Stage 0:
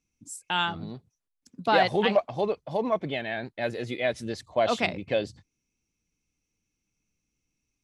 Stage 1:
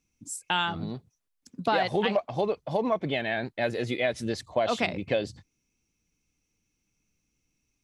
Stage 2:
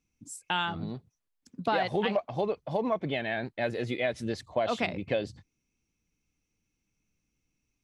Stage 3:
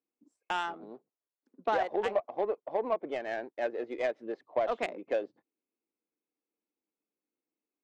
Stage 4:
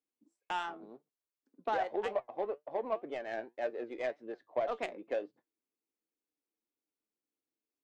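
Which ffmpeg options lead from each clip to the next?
-af "acompressor=threshold=-26dB:ratio=4,volume=3.5dB"
-af "bass=f=250:g=1,treble=f=4k:g=-4,volume=-2.5dB"
-af "highpass=f=340:w=0.5412,highpass=f=340:w=1.3066,adynamicsmooth=sensitivity=1:basefreq=930"
-af "flanger=delay=6.6:depth=2.7:regen=71:speed=1.9:shape=sinusoidal"

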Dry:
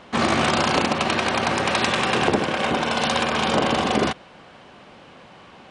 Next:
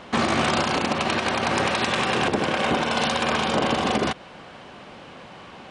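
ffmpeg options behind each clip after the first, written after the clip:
-af "alimiter=limit=-15dB:level=0:latency=1:release=221,volume=3.5dB"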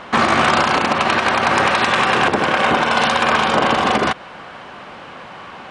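-af "equalizer=f=1.3k:w=0.68:g=8,volume=2.5dB"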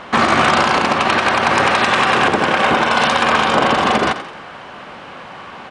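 -filter_complex "[0:a]asplit=5[a][b][c][d][e];[b]adelay=87,afreqshift=38,volume=-11.5dB[f];[c]adelay=174,afreqshift=76,volume=-18.6dB[g];[d]adelay=261,afreqshift=114,volume=-25.8dB[h];[e]adelay=348,afreqshift=152,volume=-32.9dB[i];[a][f][g][h][i]amix=inputs=5:normalize=0,volume=1dB"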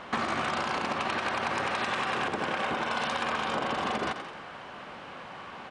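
-af "acompressor=threshold=-18dB:ratio=6,volume=-9dB"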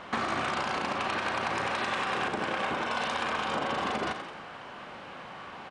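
-filter_complex "[0:a]asplit=2[a][b];[b]adelay=36,volume=-9dB[c];[a][c]amix=inputs=2:normalize=0,volume=-1dB"

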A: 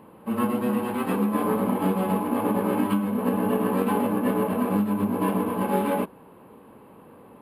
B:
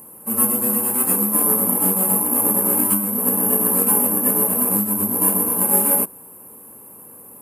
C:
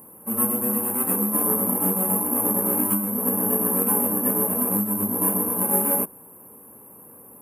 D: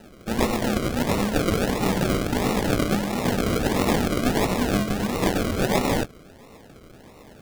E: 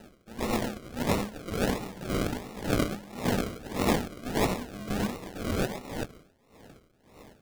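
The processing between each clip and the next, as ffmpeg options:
-af "aexciter=amount=15.4:drive=7.6:freq=5.6k,volume=-1dB"
-af "equalizer=f=5.6k:w=0.71:g=-13,volume=-1.5dB"
-af "acrusher=samples=39:mix=1:aa=0.000001:lfo=1:lforange=23.4:lforate=1.5"
-af "aeval=exprs='val(0)*pow(10,-18*(0.5-0.5*cos(2*PI*1.8*n/s))/20)':c=same,volume=-2.5dB"

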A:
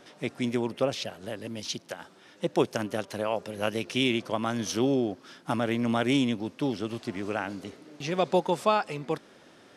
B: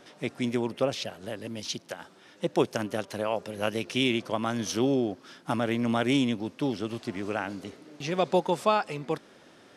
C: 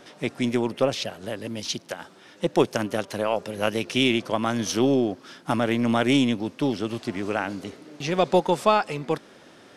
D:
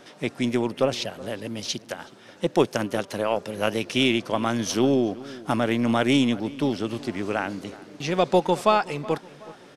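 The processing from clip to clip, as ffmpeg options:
-af anull
-af "aeval=exprs='0.316*(cos(1*acos(clip(val(0)/0.316,-1,1)))-cos(1*PI/2))+0.00501*(cos(6*acos(clip(val(0)/0.316,-1,1)))-cos(6*PI/2))':c=same,volume=4.5dB"
-filter_complex "[0:a]asplit=2[a][b];[b]adelay=372,lowpass=f=2.2k:p=1,volume=-19dB,asplit=2[c][d];[d]adelay=372,lowpass=f=2.2k:p=1,volume=0.46,asplit=2[e][f];[f]adelay=372,lowpass=f=2.2k:p=1,volume=0.46,asplit=2[g][h];[h]adelay=372,lowpass=f=2.2k:p=1,volume=0.46[i];[a][c][e][g][i]amix=inputs=5:normalize=0"

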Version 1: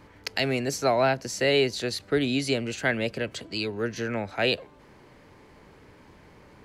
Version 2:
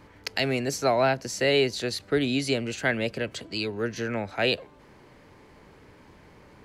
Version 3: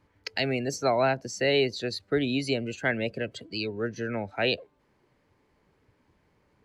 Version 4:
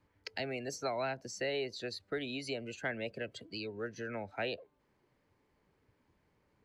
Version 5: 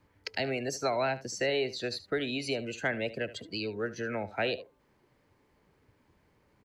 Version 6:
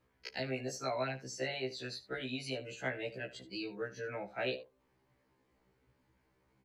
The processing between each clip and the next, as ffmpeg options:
-af anull
-af "afftdn=nr=14:nf=-36,volume=-1.5dB"
-filter_complex "[0:a]acrossover=split=440|1600[a][b][c];[a]acompressor=threshold=-37dB:ratio=4[d];[b]acompressor=threshold=-29dB:ratio=4[e];[c]acompressor=threshold=-34dB:ratio=4[f];[d][e][f]amix=inputs=3:normalize=0,volume=-6.5dB"
-af "aecho=1:1:74:0.158,volume=6dB"
-af "afftfilt=real='re*1.73*eq(mod(b,3),0)':imag='im*1.73*eq(mod(b,3),0)':win_size=2048:overlap=0.75,volume=-4dB"

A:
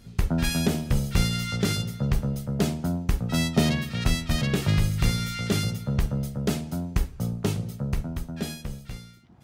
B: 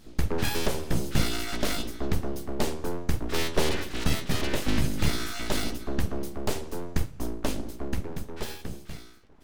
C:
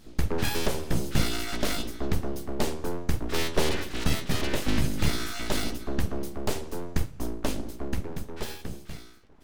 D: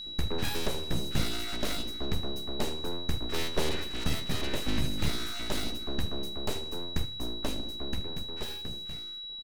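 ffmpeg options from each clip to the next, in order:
-af "aeval=exprs='abs(val(0))':c=same"
-af anull
-af "aeval=exprs='val(0)+0.0224*sin(2*PI*3900*n/s)':c=same,aecho=1:1:77|154|231:0.119|0.0428|0.0154,volume=-5dB"

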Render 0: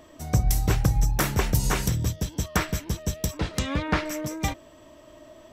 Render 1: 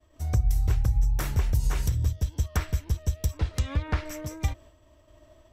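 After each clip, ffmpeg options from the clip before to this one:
-af "agate=range=-33dB:threshold=-44dB:ratio=3:detection=peak,lowshelf=f=120:t=q:w=1.5:g=11.5,acompressor=threshold=-17dB:ratio=2.5,volume=-5.5dB"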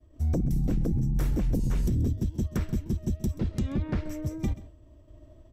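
-filter_complex "[0:a]acrossover=split=440[a][b];[a]aeval=exprs='0.211*sin(PI/2*3.55*val(0)/0.211)':c=same[c];[c][b]amix=inputs=2:normalize=0,aecho=1:1:132:0.133,volume=-8.5dB"

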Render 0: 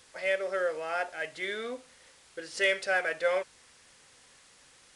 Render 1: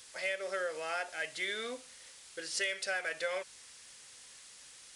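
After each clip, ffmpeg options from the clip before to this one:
-af "highshelf=f=2.3k:g=12,acompressor=threshold=-27dB:ratio=6,volume=-4.5dB"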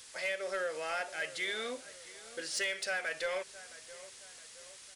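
-filter_complex "[0:a]asoftclip=type=tanh:threshold=-27.5dB,asplit=2[a][b];[b]adelay=668,lowpass=f=2k:p=1,volume=-16dB,asplit=2[c][d];[d]adelay=668,lowpass=f=2k:p=1,volume=0.5,asplit=2[e][f];[f]adelay=668,lowpass=f=2k:p=1,volume=0.5,asplit=2[g][h];[h]adelay=668,lowpass=f=2k:p=1,volume=0.5[i];[a][c][e][g][i]amix=inputs=5:normalize=0,volume=1.5dB"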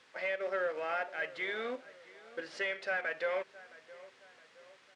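-filter_complex "[0:a]asplit=2[a][b];[b]acrusher=bits=5:mix=0:aa=0.000001,volume=-11dB[c];[a][c]amix=inputs=2:normalize=0,highpass=170,lowpass=2.1k"

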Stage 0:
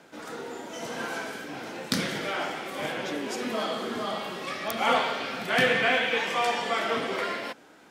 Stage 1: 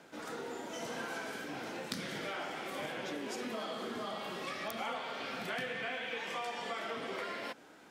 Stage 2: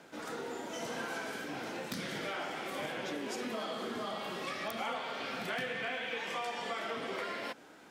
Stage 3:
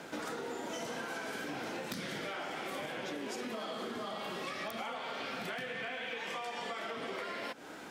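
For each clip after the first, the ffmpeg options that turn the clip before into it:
-af "acompressor=threshold=-33dB:ratio=6,volume=-3.5dB"
-af "aeval=exprs='0.0398*(abs(mod(val(0)/0.0398+3,4)-2)-1)':c=same,volume=1.5dB"
-af "acompressor=threshold=-45dB:ratio=12,volume=8.5dB"

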